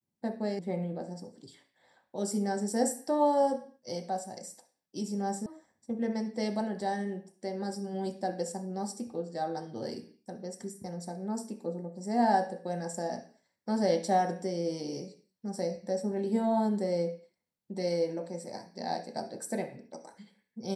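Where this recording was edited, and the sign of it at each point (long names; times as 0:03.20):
0:00.59: cut off before it has died away
0:05.46: cut off before it has died away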